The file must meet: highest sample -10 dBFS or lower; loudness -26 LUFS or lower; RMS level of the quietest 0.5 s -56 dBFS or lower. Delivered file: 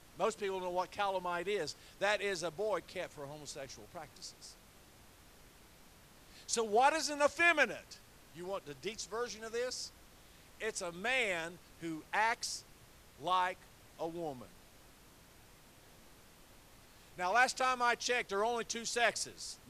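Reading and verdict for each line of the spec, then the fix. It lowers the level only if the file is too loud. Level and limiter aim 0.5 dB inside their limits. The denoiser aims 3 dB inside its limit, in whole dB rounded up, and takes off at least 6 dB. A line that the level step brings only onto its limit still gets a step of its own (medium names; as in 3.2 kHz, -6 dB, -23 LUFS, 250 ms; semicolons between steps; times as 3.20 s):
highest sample -15.5 dBFS: pass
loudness -35.0 LUFS: pass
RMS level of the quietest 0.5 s -60 dBFS: pass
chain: none needed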